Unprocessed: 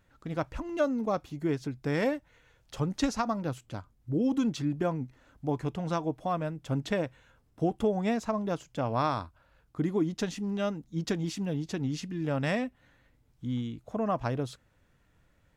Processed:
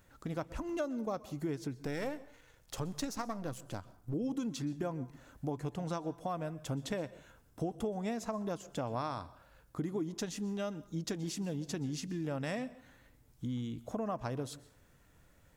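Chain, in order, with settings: 1.78–4.14 half-wave gain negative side -7 dB; tone controls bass -2 dB, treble +8 dB; compressor 3:1, threshold -40 dBFS, peak gain reduction 13.5 dB; bell 4200 Hz -4 dB 2.4 oct; plate-style reverb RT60 0.53 s, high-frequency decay 0.75×, pre-delay 0.11 s, DRR 18 dB; gain +3.5 dB

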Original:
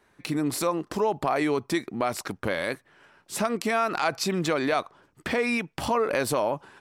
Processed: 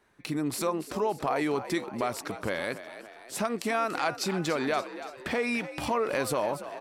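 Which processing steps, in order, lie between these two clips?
frequency-shifting echo 0.287 s, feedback 53%, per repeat +62 Hz, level -12.5 dB; gain -3.5 dB

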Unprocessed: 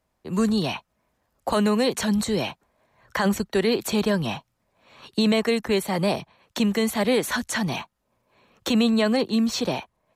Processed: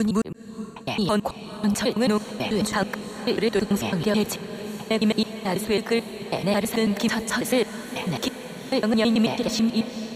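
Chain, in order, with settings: slices in reverse order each 0.109 s, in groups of 5; on a send: diffused feedback echo 0.465 s, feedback 72%, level -13 dB

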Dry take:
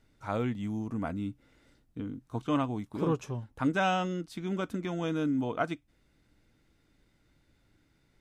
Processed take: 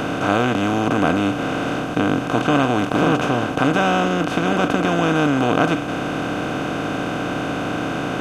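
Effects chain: per-bin compression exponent 0.2; gain +5 dB

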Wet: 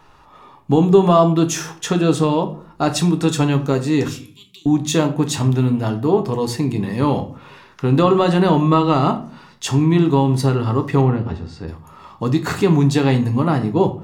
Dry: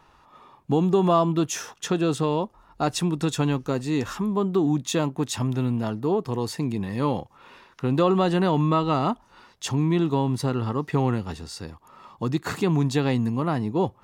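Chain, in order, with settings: 4.08–4.66 elliptic high-pass 2300 Hz, stop band 40 dB; 11.01–11.68 tape spacing loss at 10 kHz 26 dB; shoebox room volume 36 m³, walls mixed, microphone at 0.31 m; gain +5.5 dB

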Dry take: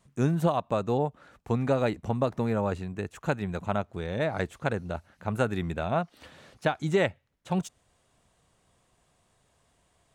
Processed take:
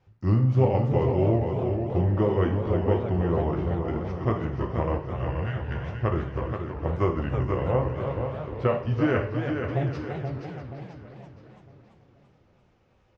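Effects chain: spectral repair 3.94–4.62, 290–1800 Hz before; feedback echo 0.368 s, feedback 43%, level -6.5 dB; on a send at -2.5 dB: reverb, pre-delay 3 ms; on the sum: varispeed -23%; air absorption 260 m; warbling echo 0.331 s, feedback 55%, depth 214 cents, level -8.5 dB

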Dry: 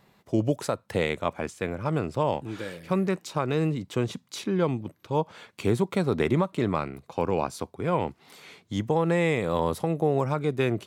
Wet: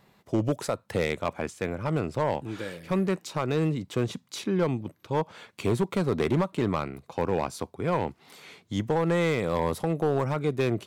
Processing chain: overloaded stage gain 18 dB

